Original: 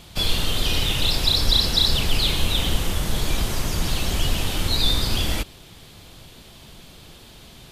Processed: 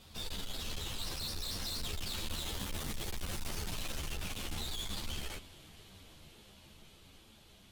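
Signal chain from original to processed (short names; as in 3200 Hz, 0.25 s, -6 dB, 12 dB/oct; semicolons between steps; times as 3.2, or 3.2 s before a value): Doppler pass-by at 3, 21 m/s, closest 5.9 m; tube stage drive 48 dB, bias 0.35; ensemble effect; gain +13.5 dB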